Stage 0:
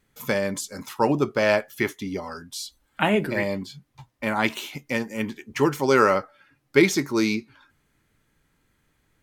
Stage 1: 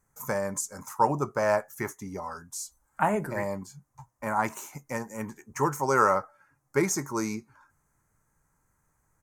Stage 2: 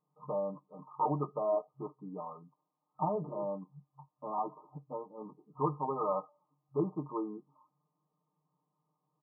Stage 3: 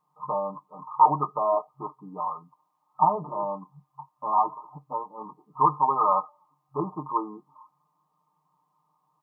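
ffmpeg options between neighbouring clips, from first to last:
-af "firequalizer=gain_entry='entry(150,0);entry(260,-7);entry(940,6);entry(3300,-22);entry(6400,6);entry(12000,2)':delay=0.05:min_phase=1,volume=-3.5dB"
-af "aeval=exprs='0.141*(abs(mod(val(0)/0.141+3,4)-2)-1)':c=same,aecho=1:1:6.6:0.9,afftfilt=real='re*between(b*sr/4096,130,1300)':imag='im*between(b*sr/4096,130,1300)':win_size=4096:overlap=0.75,volume=-8.5dB"
-af "equalizer=f=125:t=o:w=1:g=-4,equalizer=f=250:t=o:w=1:g=-4,equalizer=f=500:t=o:w=1:g=-7,equalizer=f=1k:t=o:w=1:g=11,volume=6.5dB"

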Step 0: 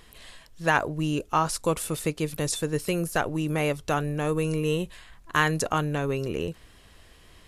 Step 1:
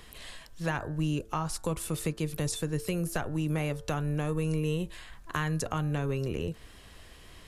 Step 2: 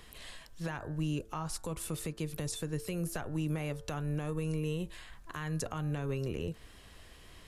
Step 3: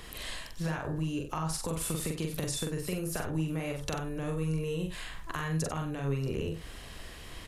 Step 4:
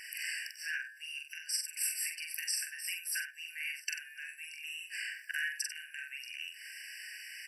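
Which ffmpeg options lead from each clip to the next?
-filter_complex "[0:a]acrossover=split=160[a][b];[b]acompressor=threshold=-35dB:ratio=3[c];[a][c]amix=inputs=2:normalize=0,bandreject=f=111.7:t=h:w=4,bandreject=f=223.4:t=h:w=4,bandreject=f=335.1:t=h:w=4,bandreject=f=446.8:t=h:w=4,bandreject=f=558.5:t=h:w=4,bandreject=f=670.2:t=h:w=4,bandreject=f=781.9:t=h:w=4,bandreject=f=893.6:t=h:w=4,bandreject=f=1.0053k:t=h:w=4,bandreject=f=1.117k:t=h:w=4,bandreject=f=1.2287k:t=h:w=4,bandreject=f=1.3404k:t=h:w=4,bandreject=f=1.4521k:t=h:w=4,bandreject=f=1.5638k:t=h:w=4,bandreject=f=1.6755k:t=h:w=4,bandreject=f=1.7872k:t=h:w=4,volume=2dB"
-af "alimiter=limit=-22.5dB:level=0:latency=1:release=152,volume=-3dB"
-filter_complex "[0:a]acompressor=threshold=-38dB:ratio=6,asplit=2[a][b];[b]aecho=0:1:43.73|93.29:0.708|0.282[c];[a][c]amix=inputs=2:normalize=0,volume=7dB"
-af "afftfilt=real='re*eq(mod(floor(b*sr/1024/1500),2),1)':imag='im*eq(mod(floor(b*sr/1024/1500),2),1)':win_size=1024:overlap=0.75,volume=6dB"

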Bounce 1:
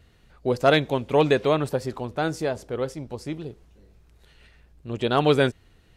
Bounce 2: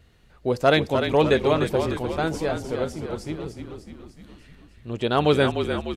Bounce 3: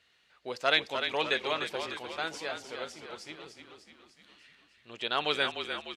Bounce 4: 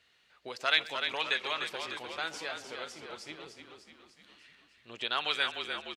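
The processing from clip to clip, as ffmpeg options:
-filter_complex "[0:a]asplit=9[a][b][c][d][e][f][g][h][i];[b]adelay=300,afreqshift=-39,volume=-7dB[j];[c]adelay=600,afreqshift=-78,volume=-11.6dB[k];[d]adelay=900,afreqshift=-117,volume=-16.2dB[l];[e]adelay=1200,afreqshift=-156,volume=-20.7dB[m];[f]adelay=1500,afreqshift=-195,volume=-25.3dB[n];[g]adelay=1800,afreqshift=-234,volume=-29.9dB[o];[h]adelay=2100,afreqshift=-273,volume=-34.5dB[p];[i]adelay=2400,afreqshift=-312,volume=-39.1dB[q];[a][j][k][l][m][n][o][p][q]amix=inputs=9:normalize=0"
-af "bandpass=f=3.1k:t=q:w=0.77:csg=0"
-filter_complex "[0:a]acrossover=split=900[a][b];[a]acompressor=threshold=-42dB:ratio=6[c];[c][b]amix=inputs=2:normalize=0,asplit=2[d][e];[e]adelay=130,highpass=300,lowpass=3.4k,asoftclip=type=hard:threshold=-19dB,volume=-18dB[f];[d][f]amix=inputs=2:normalize=0"

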